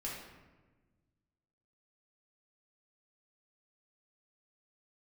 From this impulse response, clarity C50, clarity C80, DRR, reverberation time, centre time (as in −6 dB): 1.5 dB, 4.5 dB, −5.5 dB, 1.3 s, 61 ms